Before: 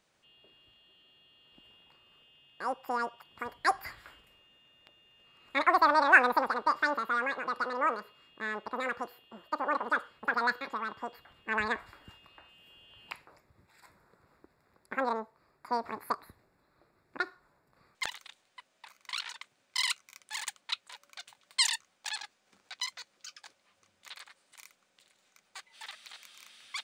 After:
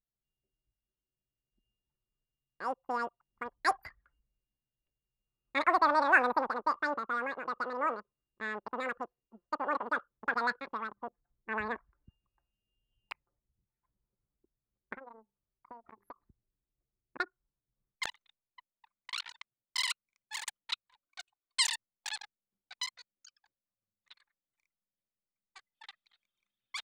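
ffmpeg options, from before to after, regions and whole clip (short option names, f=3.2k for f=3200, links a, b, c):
-filter_complex "[0:a]asettb=1/sr,asplit=3[a][b][c];[a]atrim=end=10.874[d];[b]atrim=start=10.87:end=11.78,asetpts=PTS-STARTPTS,afade=t=in:d=0.004:c=qsin,afade=t=out:st=0.906:d=0.004:c=qsin,lowpass=f=1.6k:p=1,bandreject=f=50:t=h:w=6,bandreject=f=100:t=h:w=6,bandreject=f=150:t=h:w=6,bandreject=f=200:t=h:w=6,bandreject=f=250:t=h:w=6,bandreject=f=300:t=h:w=6[e];[c]atrim=start=11.776[f];[d][e]acrossfade=d=0.004:c1=hsin:c2=qsin[g];[g][f]acrossfade=d=0.004:c1=qsin:c2=hsin,asettb=1/sr,asplit=3[h][i][j];[h]atrim=end=14.944[k];[i]atrim=start=14.94:end=16.16,asetpts=PTS-STARTPTS,afade=t=in:d=0.004:c=qsin,afade=t=out:st=1.216:d=0.004:c=qsin,bandreject=f=50:t=h:w=6,bandreject=f=100:t=h:w=6,bandreject=f=150:t=h:w=6,bandreject=f=200:t=h:w=6,bandreject=f=250:t=h:w=6,bandreject=f=300:t=h:w=6,bandreject=f=350:t=h:w=6,bandreject=f=400:t=h:w=6,acompressor=threshold=-42dB:ratio=6:attack=3.2:release=140:knee=1:detection=peak[l];[j]atrim=start=16.156[m];[k][l]acrossfade=d=0.004:c1=hsin:c2=qsin[n];[n][m]acrossfade=d=0.004:c1=qsin:c2=hsin,asettb=1/sr,asplit=3[o][p][q];[o]atrim=end=21.064[r];[p]atrim=start=21.06:end=21.6,asetpts=PTS-STARTPTS,afade=t=in:d=0.004:c=qsin,afade=t=out:st=0.536:d=0.004:c=qsin,lowshelf=f=270:g=-10,aecho=1:1:2.7:0.96,atrim=end_sample=23814[s];[q]atrim=start=21.596[t];[r][s]acrossfade=d=0.004:c1=hsin:c2=qsin[u];[u][t]acrossfade=d=0.004:c1=qsin:c2=hsin,anlmdn=0.398,adynamicequalizer=threshold=0.01:dfrequency=1500:dqfactor=0.7:tfrequency=1500:tqfactor=0.7:attack=5:release=100:ratio=0.375:range=3.5:mode=cutabove:tftype=highshelf,volume=-1.5dB"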